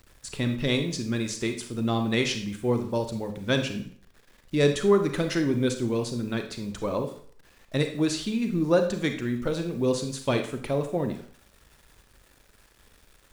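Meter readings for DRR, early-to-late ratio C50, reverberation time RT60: 6.0 dB, 8.5 dB, 0.55 s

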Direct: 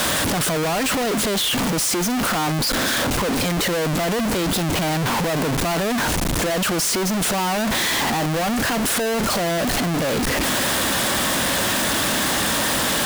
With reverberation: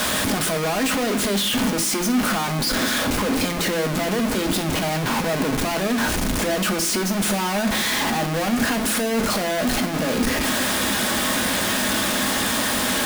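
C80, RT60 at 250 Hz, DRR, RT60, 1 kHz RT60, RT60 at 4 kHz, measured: 15.5 dB, 0.95 s, 4.0 dB, 0.65 s, 0.75 s, 1.1 s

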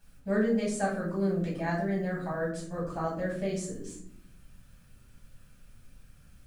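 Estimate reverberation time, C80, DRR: 0.60 s, 9.5 dB, -6.0 dB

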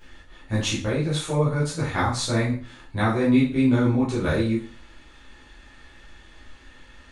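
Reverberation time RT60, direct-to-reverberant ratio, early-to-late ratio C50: 0.40 s, -10.0 dB, 5.5 dB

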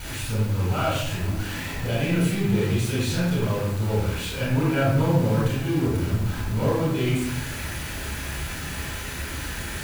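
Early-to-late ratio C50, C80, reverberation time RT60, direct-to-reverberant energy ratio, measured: -1.5 dB, 2.5 dB, 0.75 s, -6.5 dB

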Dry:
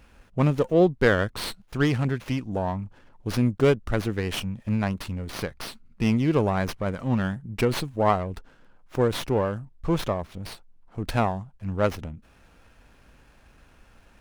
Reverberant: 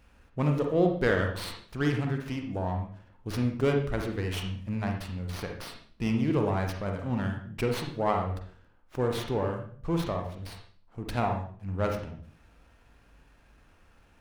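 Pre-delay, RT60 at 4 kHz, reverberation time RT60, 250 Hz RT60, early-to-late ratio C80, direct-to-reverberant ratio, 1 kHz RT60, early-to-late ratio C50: 39 ms, 0.45 s, 0.50 s, 0.55 s, 9.5 dB, 2.5 dB, 0.45 s, 5.0 dB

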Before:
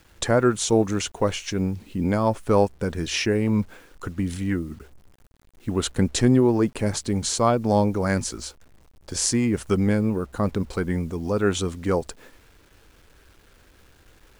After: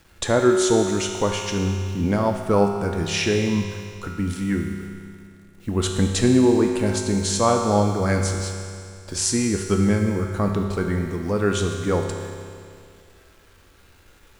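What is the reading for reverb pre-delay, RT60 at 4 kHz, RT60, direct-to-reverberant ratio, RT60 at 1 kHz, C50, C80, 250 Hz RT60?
4 ms, 2.3 s, 2.3 s, 1.5 dB, 2.3 s, 3.5 dB, 4.5 dB, 2.3 s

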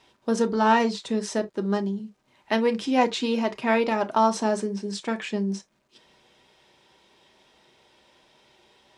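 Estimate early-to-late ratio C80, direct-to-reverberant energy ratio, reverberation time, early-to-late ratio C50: 38.0 dB, 5.5 dB, not exponential, 22.0 dB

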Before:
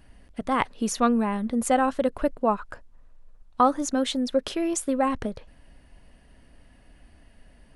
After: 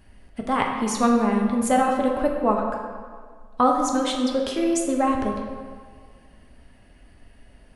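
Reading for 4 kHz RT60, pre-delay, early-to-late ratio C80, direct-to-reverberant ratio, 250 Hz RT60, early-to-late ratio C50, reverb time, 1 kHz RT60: 1.1 s, 4 ms, 5.0 dB, 0.0 dB, 1.8 s, 3.5 dB, 1.8 s, 1.8 s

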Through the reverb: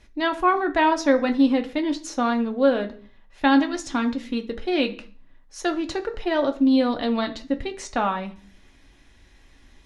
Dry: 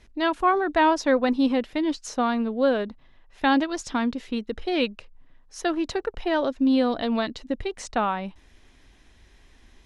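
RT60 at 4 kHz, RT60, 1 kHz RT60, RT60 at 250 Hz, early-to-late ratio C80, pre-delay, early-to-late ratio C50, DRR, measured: 0.45 s, 0.45 s, 0.40 s, 0.60 s, 20.0 dB, 3 ms, 15.5 dB, 4.0 dB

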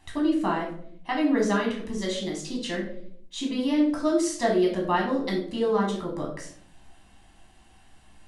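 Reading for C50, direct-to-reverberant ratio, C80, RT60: 6.0 dB, -2.0 dB, 10.0 dB, 0.65 s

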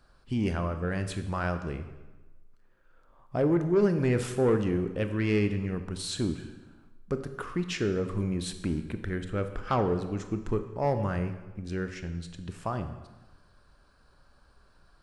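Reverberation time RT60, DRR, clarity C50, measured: 1.2 s, 8.0 dB, 10.0 dB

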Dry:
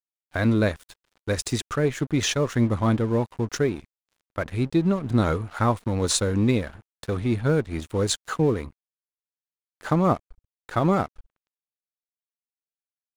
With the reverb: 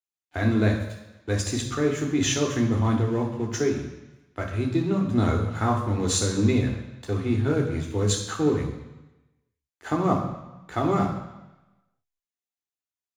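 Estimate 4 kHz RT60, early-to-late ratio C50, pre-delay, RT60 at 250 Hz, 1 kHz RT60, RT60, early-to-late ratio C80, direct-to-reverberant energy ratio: 1.1 s, 6.0 dB, 3 ms, 1.0 s, 1.1 s, 1.0 s, 8.5 dB, -0.5 dB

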